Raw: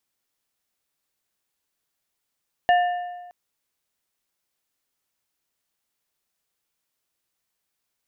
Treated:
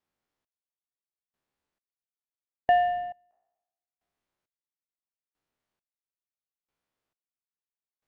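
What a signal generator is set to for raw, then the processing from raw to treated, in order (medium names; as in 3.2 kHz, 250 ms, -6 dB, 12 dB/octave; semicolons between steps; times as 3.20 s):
metal hit plate, length 0.62 s, lowest mode 711 Hz, modes 3, decay 1.30 s, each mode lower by 8.5 dB, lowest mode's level -13 dB
spectral sustain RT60 1.00 s; low-pass 1.1 kHz 6 dB/octave; trance gate "xxx......" 101 bpm -24 dB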